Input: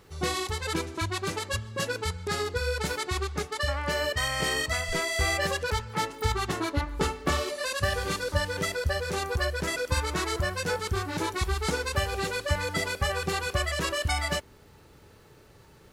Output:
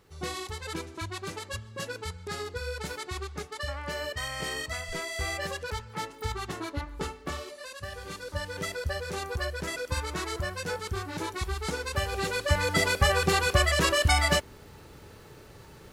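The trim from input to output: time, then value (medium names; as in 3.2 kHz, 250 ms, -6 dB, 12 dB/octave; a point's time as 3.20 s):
6.90 s -6 dB
7.85 s -12.5 dB
8.67 s -4 dB
11.75 s -4 dB
12.88 s +5 dB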